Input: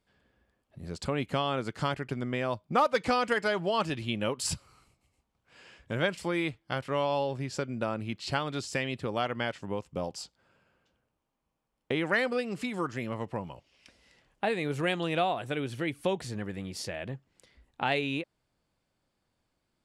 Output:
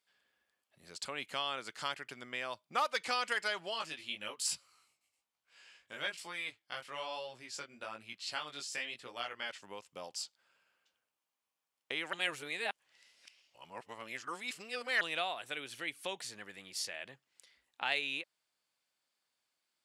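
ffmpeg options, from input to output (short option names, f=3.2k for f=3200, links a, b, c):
-filter_complex "[0:a]asplit=3[a][b][c];[a]afade=t=out:st=3.73:d=0.02[d];[b]flanger=delay=16:depth=5:speed=1.1,afade=t=in:st=3.73:d=0.02,afade=t=out:st=9.49:d=0.02[e];[c]afade=t=in:st=9.49:d=0.02[f];[d][e][f]amix=inputs=3:normalize=0,asplit=3[g][h][i];[g]atrim=end=12.132[j];[h]atrim=start=12.128:end=15.012,asetpts=PTS-STARTPTS,areverse[k];[i]atrim=start=15.008[l];[j][k]acrossfade=d=0.004:c1=hsin:c2=hsin[m];[m][l]acrossfade=d=0.004:c1=hsin:c2=hsin,highpass=f=1.1k:p=1,tiltshelf=f=1.5k:g=-4,volume=-2.5dB"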